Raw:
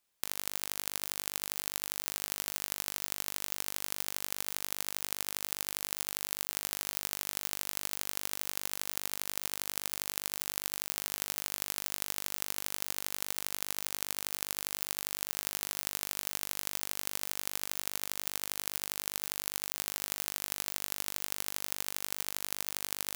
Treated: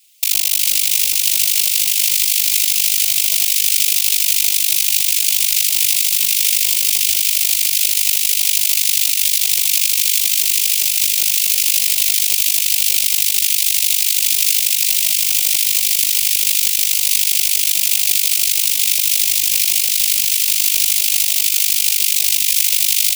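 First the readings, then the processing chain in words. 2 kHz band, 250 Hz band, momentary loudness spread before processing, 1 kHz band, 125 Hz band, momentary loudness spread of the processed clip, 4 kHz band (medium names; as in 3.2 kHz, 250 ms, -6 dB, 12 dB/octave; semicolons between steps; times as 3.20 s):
+18.0 dB, under -40 dB, 0 LU, under -15 dB, under -40 dB, 1 LU, +23.0 dB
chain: steep high-pass 2.3 kHz 48 dB/octave; on a send: feedback delay 369 ms, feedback 60%, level -12 dB; on the sum: whisper effect; loudness maximiser +28 dB; trim -1 dB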